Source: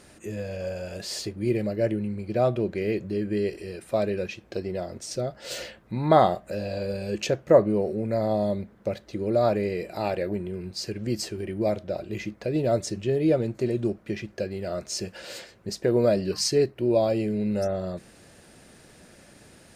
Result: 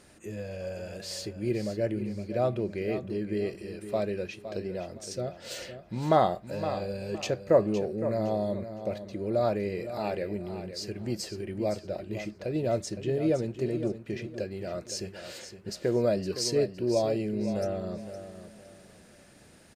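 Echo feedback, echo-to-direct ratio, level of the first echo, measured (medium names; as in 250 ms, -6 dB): 28%, -10.5 dB, -11.0 dB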